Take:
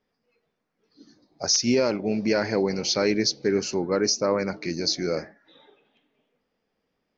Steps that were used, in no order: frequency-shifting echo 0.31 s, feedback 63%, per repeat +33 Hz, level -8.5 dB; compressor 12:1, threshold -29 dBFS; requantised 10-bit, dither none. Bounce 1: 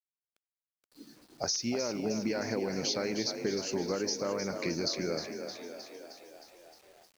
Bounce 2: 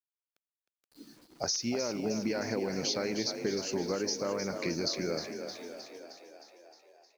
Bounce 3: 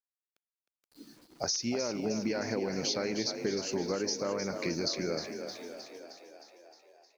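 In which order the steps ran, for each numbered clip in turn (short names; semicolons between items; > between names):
compressor > frequency-shifting echo > requantised; compressor > requantised > frequency-shifting echo; requantised > compressor > frequency-shifting echo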